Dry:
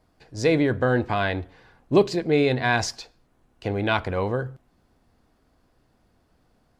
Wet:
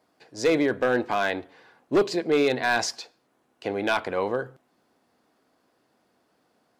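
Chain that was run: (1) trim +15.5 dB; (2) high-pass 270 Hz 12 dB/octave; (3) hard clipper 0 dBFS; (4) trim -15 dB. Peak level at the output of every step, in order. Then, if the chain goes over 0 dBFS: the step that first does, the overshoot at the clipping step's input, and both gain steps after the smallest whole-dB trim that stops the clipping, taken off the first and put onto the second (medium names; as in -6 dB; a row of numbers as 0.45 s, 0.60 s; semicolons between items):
+8.5 dBFS, +9.5 dBFS, 0.0 dBFS, -15.0 dBFS; step 1, 9.5 dB; step 1 +5.5 dB, step 4 -5 dB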